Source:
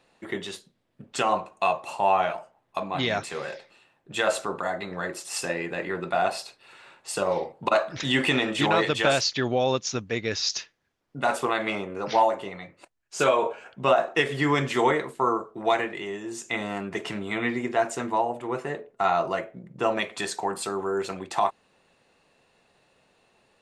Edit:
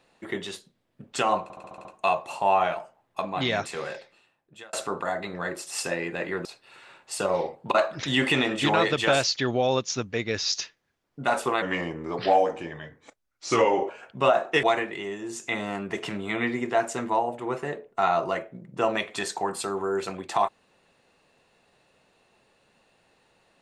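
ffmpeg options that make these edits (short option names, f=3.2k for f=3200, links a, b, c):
-filter_complex "[0:a]asplit=12[a][b][c][d][e][f][g][h][i][j][k][l];[a]atrim=end=1.502[m];[b]atrim=start=1.428:end=1.502[n];[c]atrim=start=1.428:end=1.502[o];[d]atrim=start=1.428:end=1.502[p];[e]atrim=start=1.428:end=1.502[q];[f]atrim=start=1.428:end=1.502[r];[g]atrim=start=1.428:end=4.31,asetpts=PTS-STARTPTS,afade=t=out:st=2.022:d=0.86[s];[h]atrim=start=4.31:end=6.032,asetpts=PTS-STARTPTS,afade=t=in:d=0.004:c=hsin[t];[i]atrim=start=6.418:end=11.594[u];[j]atrim=start=11.59:end=13.52,asetpts=PTS-STARTPTS,asetrate=37485,aresample=44100[v];[k]atrim=start=13.516:end=14.262[w];[l]atrim=start=15.648[x];[m][n]acrossfade=d=0.004:c1=hsin:c2=hsin[y];[y][o]acrossfade=d=0.004:c1=hsin:c2=hsin[z];[z][p]acrossfade=d=0.004:c1=hsin:c2=hsin[aa];[aa][q]acrossfade=d=0.004:c1=hsin:c2=hsin[ab];[ab][r]acrossfade=d=0.004:c1=hsin:c2=hsin[ac];[s][t]concat=n=2:v=0:a=1[ad];[ac][ad]acrossfade=d=0.004:c1=hsin:c2=hsin[ae];[ae][u]acrossfade=d=0.004:c1=hsin:c2=hsin[af];[af][v]acrossfade=d=0.004:c1=hsin:c2=hsin[ag];[ag][w]acrossfade=d=0.004:c1=hsin:c2=hsin[ah];[ah][x]acrossfade=d=0.004:c1=hsin:c2=hsin"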